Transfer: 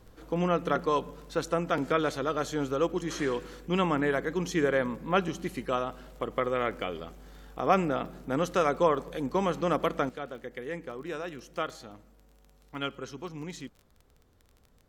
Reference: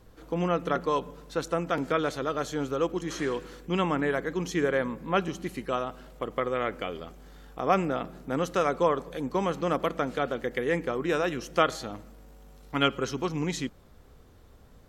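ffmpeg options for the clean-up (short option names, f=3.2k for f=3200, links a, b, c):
-af "adeclick=t=4,asetnsamples=n=441:p=0,asendcmd='10.09 volume volume 9.5dB',volume=0dB"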